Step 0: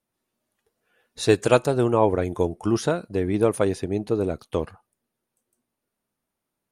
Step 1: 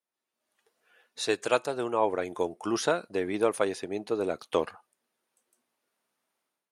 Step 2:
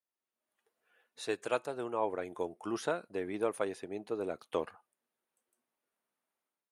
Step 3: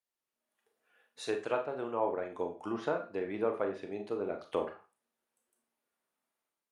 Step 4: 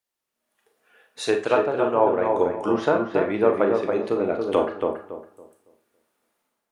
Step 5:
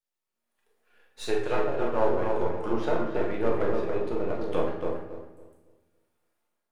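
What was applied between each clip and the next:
weighting filter A; AGC gain up to 13 dB; gain -8.5 dB
bell 5200 Hz -6 dB 1.3 oct; gain -7 dB
treble ducked by the level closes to 1800 Hz, closed at -30.5 dBFS; Schroeder reverb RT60 0.32 s, combs from 27 ms, DRR 4.5 dB
AGC gain up to 6 dB; on a send: darkening echo 0.279 s, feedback 29%, low-pass 1300 Hz, level -3 dB; on the sum: gain +6 dB
half-wave gain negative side -7 dB; shoebox room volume 210 m³, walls mixed, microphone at 0.94 m; gain -7 dB

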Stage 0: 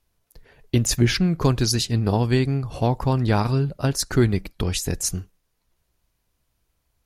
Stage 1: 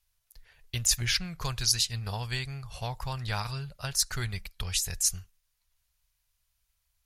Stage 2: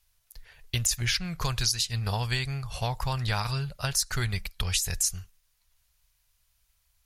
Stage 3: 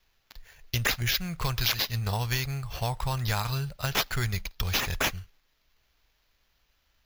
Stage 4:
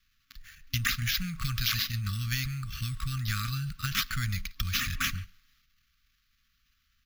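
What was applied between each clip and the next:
passive tone stack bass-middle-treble 10-0-10
compressor 10:1, threshold -29 dBFS, peak gain reduction 10.5 dB; gain +6 dB
sample-and-hold 5×
transient shaper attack +2 dB, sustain +8 dB; speakerphone echo 0.14 s, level -20 dB; FFT band-reject 270–1100 Hz; gain -3 dB

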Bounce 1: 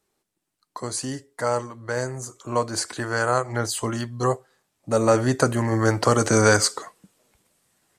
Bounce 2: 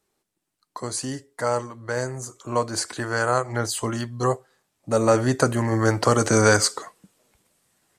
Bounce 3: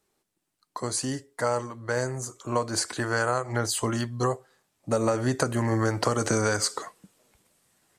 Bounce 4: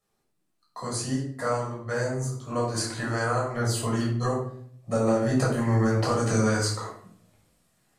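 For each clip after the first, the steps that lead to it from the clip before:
nothing audible
compressor 12:1, threshold -20 dBFS, peak gain reduction 9.5 dB
reverb RT60 0.55 s, pre-delay 9 ms, DRR -5 dB; gain -9 dB

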